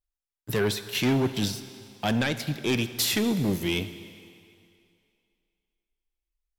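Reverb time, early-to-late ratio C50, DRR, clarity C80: 2.4 s, 12.0 dB, 11.0 dB, 13.0 dB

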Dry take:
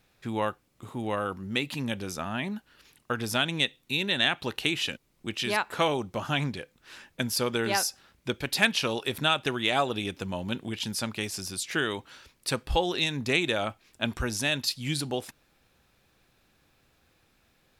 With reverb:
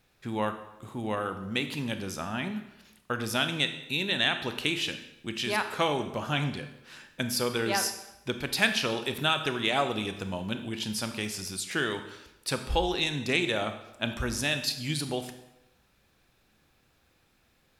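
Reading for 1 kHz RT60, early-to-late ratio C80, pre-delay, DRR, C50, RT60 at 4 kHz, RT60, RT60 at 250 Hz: 0.90 s, 12.0 dB, 25 ms, 8.0 dB, 9.5 dB, 0.75 s, 0.90 s, 0.90 s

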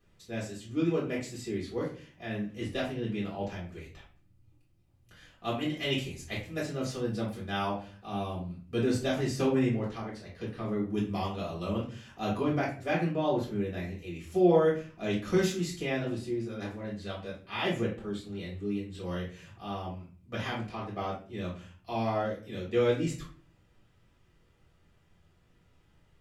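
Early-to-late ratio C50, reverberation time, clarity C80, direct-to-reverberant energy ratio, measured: 6.0 dB, 0.40 s, 11.0 dB, −7.0 dB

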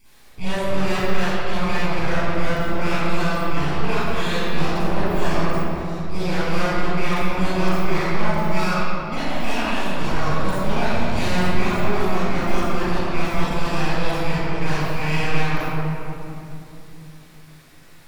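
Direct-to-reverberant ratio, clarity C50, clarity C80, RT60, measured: −12.5 dB, −8.5 dB, −4.5 dB, 2.9 s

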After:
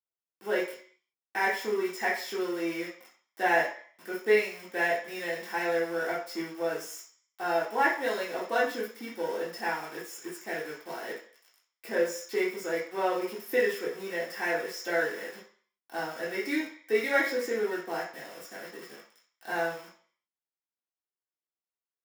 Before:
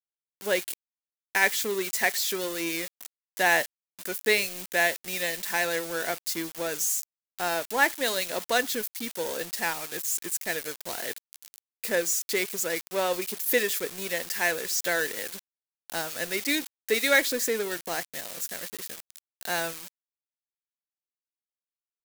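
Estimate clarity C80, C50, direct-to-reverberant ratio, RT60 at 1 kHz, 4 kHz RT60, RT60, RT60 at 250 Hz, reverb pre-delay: 10.0 dB, 5.5 dB, −7.0 dB, 0.50 s, 0.55 s, 0.50 s, 0.45 s, 3 ms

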